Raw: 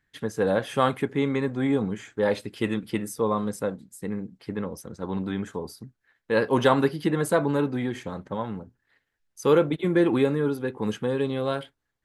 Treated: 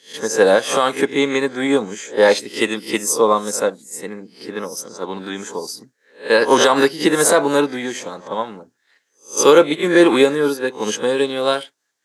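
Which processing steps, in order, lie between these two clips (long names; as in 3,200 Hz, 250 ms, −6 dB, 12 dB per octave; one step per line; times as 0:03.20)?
peak hold with a rise ahead of every peak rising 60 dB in 0.34 s
high-pass filter 330 Hz 12 dB per octave
parametric band 6,400 Hz +12.5 dB 1.3 octaves
boost into a limiter +13 dB
expander for the loud parts 1.5 to 1, over −23 dBFS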